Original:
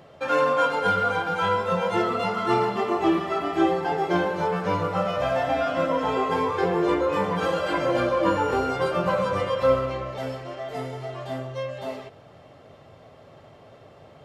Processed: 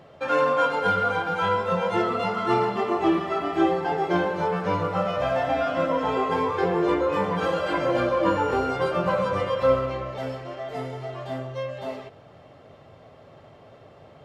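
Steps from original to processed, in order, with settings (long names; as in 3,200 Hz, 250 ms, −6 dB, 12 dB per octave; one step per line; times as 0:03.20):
high-shelf EQ 6,300 Hz −6.5 dB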